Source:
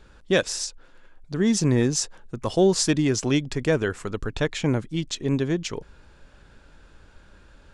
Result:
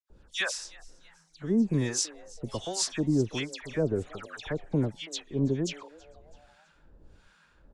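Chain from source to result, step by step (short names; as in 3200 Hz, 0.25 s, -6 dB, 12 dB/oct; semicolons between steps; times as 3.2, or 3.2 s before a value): harmonic tremolo 1.3 Hz, depth 100%, crossover 800 Hz; dispersion lows, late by 0.101 s, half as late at 2400 Hz; frequency-shifting echo 0.328 s, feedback 48%, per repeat +150 Hz, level -23 dB; gain -2.5 dB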